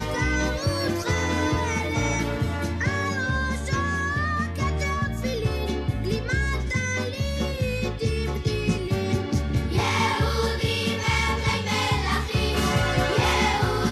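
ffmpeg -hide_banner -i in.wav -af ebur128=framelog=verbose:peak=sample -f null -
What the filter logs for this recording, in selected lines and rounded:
Integrated loudness:
  I:         -24.7 LUFS
  Threshold: -34.7 LUFS
Loudness range:
  LRA:         3.2 LU
  Threshold: -45.0 LUFS
  LRA low:   -26.4 LUFS
  LRA high:  -23.2 LUFS
Sample peak:
  Peak:       -9.8 dBFS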